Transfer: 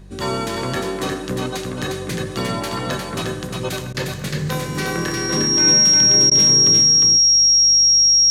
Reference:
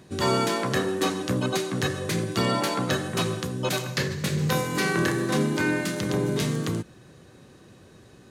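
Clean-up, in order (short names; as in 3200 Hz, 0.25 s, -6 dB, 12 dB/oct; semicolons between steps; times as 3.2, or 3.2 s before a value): de-hum 48.4 Hz, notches 4; notch 5600 Hz, Q 30; interpolate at 3.93/6.3, 13 ms; inverse comb 0.355 s -3.5 dB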